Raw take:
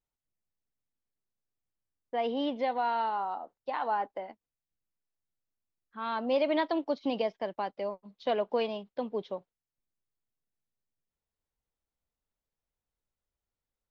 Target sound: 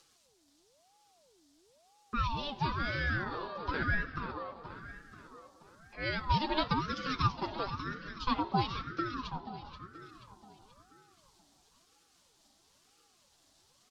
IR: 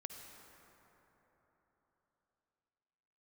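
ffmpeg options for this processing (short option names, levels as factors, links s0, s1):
-filter_complex "[0:a]acrossover=split=440[s0][s1];[s0]acompressor=threshold=0.00447:ratio=6[s2];[s1]aexciter=amount=6.4:drive=4.1:freq=3600[s3];[s2][s3]amix=inputs=2:normalize=0,lowpass=4600,flanger=delay=3.8:depth=1.9:regen=72:speed=0.8:shape=triangular,acompressor=mode=upward:threshold=0.00398:ratio=2.5,lowshelf=f=230:t=q:w=3:g=-12.5,aecho=1:1:5.9:0.73,aecho=1:1:481|962|1443|1924|2405:0.299|0.146|0.0717|0.0351|0.0172,asplit=2[s4][s5];[1:a]atrim=start_sample=2205[s6];[s5][s6]afir=irnorm=-1:irlink=0,volume=0.668[s7];[s4][s7]amix=inputs=2:normalize=0,aeval=exprs='val(0)*sin(2*PI*560*n/s+560*0.5/1*sin(2*PI*1*n/s))':c=same"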